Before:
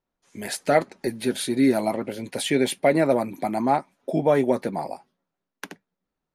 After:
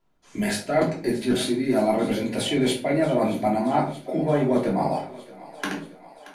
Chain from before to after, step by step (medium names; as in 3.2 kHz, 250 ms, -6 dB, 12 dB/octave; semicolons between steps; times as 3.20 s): treble shelf 9 kHz -7 dB; reverse; compression 6:1, threshold -31 dBFS, peak gain reduction 16.5 dB; reverse; thinning echo 628 ms, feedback 71%, high-pass 420 Hz, level -17 dB; simulated room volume 300 m³, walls furnished, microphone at 3 m; trim +5.5 dB